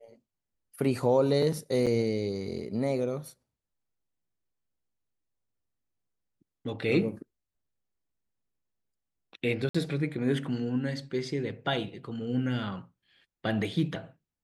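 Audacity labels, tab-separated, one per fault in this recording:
1.860000	1.870000	gap 6.6 ms
9.690000	9.740000	gap 55 ms

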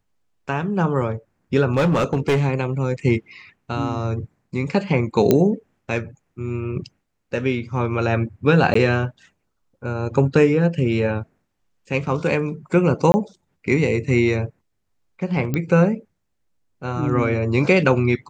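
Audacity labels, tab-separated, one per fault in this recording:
1.670000	2.420000	clipped -13.5 dBFS
5.310000	5.310000	pop -3 dBFS
8.740000	8.750000	gap 14 ms
13.120000	13.140000	gap 20 ms
15.540000	15.540000	pop -10 dBFS

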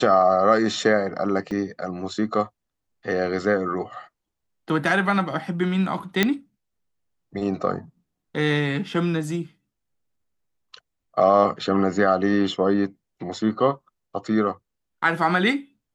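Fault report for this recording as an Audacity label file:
1.510000	1.510000	gap 2.2 ms
6.230000	6.230000	pop -4 dBFS

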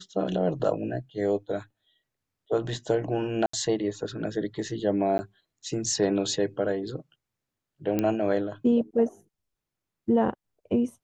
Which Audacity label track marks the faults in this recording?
3.460000	3.530000	gap 74 ms
5.180000	5.190000	gap 10 ms
7.990000	7.990000	pop -13 dBFS

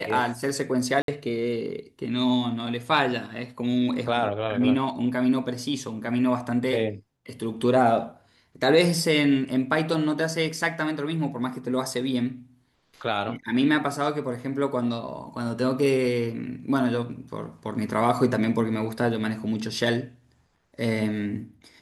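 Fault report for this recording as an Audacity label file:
1.020000	1.080000	gap 62 ms

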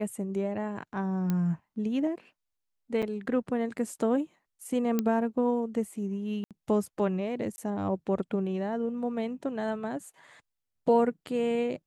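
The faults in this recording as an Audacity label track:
1.300000	1.300000	pop -17 dBFS
3.020000	3.030000	gap 6.7 ms
4.990000	4.990000	pop -14 dBFS
6.440000	6.510000	gap 67 ms
7.560000	7.580000	gap 20 ms

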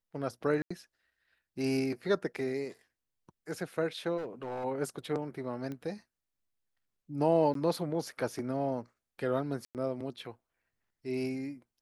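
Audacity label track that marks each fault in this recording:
0.620000	0.700000	gap 85 ms
4.170000	4.650000	clipped -34 dBFS
5.720000	5.720000	pop -28 dBFS
7.540000	7.550000	gap 13 ms
9.650000	9.750000	gap 98 ms

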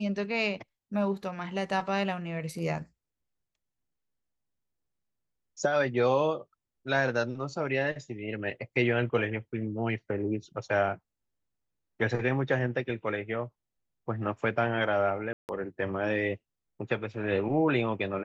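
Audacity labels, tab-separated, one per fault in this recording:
15.330000	15.490000	gap 0.159 s

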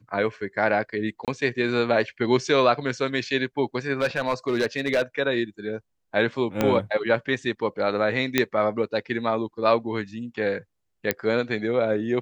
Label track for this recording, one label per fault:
1.250000	1.280000	gap 27 ms
4.000000	5.020000	clipped -17 dBFS
6.610000	6.610000	pop -8 dBFS
8.380000	8.380000	pop -4 dBFS
11.110000	11.110000	pop -6 dBFS

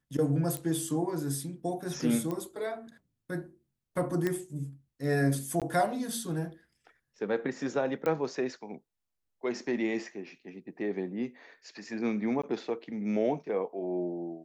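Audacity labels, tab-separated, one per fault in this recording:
0.570000	0.570000	pop -21 dBFS
2.310000	2.310000	pop -22 dBFS
4.270000	4.270000	pop -17 dBFS
5.600000	5.620000	gap 17 ms
8.060000	8.060000	pop -19 dBFS
12.420000	12.440000	gap 15 ms

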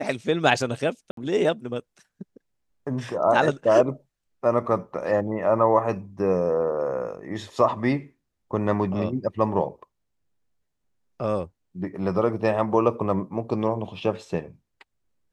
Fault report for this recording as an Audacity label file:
1.110000	1.170000	gap 63 ms

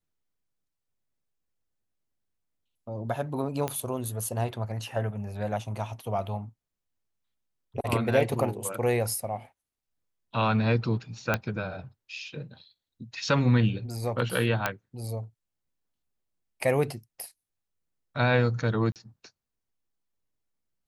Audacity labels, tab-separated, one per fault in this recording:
3.680000	3.680000	pop -15 dBFS
11.340000	11.340000	pop -10 dBFS
14.660000	14.660000	pop -10 dBFS
18.920000	18.960000	gap 38 ms

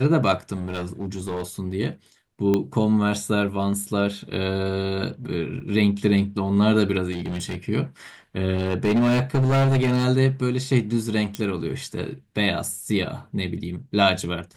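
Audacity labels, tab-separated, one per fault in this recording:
0.560000	1.430000	clipped -23.5 dBFS
2.540000	2.540000	pop -10 dBFS
5.600000	5.600000	gap 2.8 ms
7.110000	7.560000	clipped -24 dBFS
8.540000	10.050000	clipped -16 dBFS
11.350000	11.350000	pop -13 dBFS

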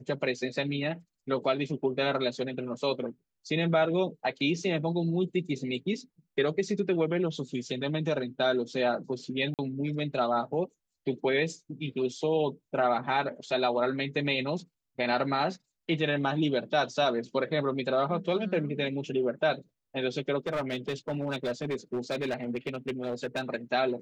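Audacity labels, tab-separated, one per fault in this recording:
9.540000	9.590000	gap 48 ms
20.470000	23.410000	clipped -26.5 dBFS

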